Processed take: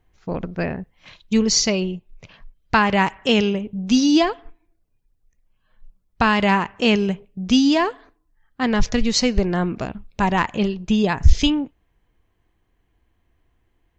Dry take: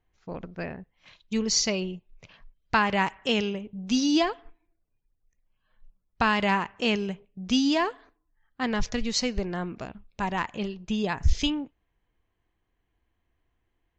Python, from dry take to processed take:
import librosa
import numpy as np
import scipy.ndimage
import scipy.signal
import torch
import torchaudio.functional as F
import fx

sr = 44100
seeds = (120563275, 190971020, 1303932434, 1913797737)

p1 = fx.low_shelf(x, sr, hz=480.0, db=3.5)
p2 = fx.rider(p1, sr, range_db=3, speed_s=0.5)
p3 = p1 + (p2 * 10.0 ** (2.5 / 20.0))
y = p3 * 10.0 ** (-1.0 / 20.0)